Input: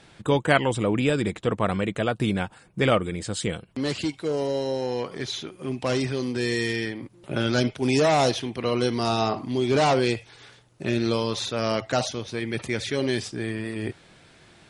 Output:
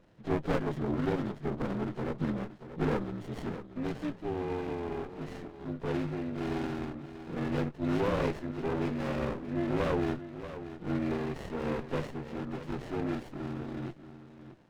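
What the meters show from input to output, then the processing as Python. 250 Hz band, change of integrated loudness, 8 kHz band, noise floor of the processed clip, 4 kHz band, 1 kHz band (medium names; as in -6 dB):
-6.0 dB, -9.0 dB, under -20 dB, -51 dBFS, -19.0 dB, -11.0 dB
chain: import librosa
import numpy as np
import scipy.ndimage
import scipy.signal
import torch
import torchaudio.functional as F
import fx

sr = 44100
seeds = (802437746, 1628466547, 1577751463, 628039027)

y = fx.partial_stretch(x, sr, pct=75)
y = y + 10.0 ** (-12.0 / 20.0) * np.pad(y, (int(633 * sr / 1000.0), 0))[:len(y)]
y = fx.running_max(y, sr, window=33)
y = y * 10.0 ** (-6.0 / 20.0)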